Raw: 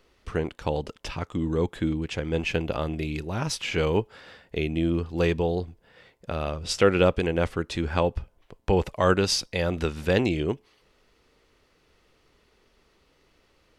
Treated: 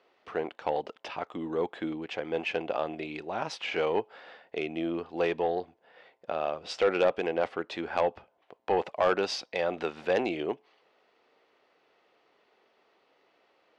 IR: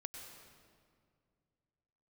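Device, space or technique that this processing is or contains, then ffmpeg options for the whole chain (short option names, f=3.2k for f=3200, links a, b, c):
intercom: -af "highpass=350,lowpass=3.5k,equalizer=f=730:t=o:w=0.56:g=7.5,asoftclip=type=tanh:threshold=-14dB,volume=-2dB"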